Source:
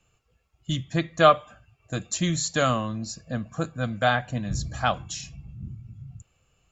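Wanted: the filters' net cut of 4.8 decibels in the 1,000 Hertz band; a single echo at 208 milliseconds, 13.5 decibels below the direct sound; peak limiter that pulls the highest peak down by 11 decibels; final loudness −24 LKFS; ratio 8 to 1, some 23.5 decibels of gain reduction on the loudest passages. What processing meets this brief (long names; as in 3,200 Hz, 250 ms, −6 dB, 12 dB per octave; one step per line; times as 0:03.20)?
parametric band 1,000 Hz −7 dB
downward compressor 8 to 1, threshold −39 dBFS
brickwall limiter −38 dBFS
single-tap delay 208 ms −13.5 dB
level +23.5 dB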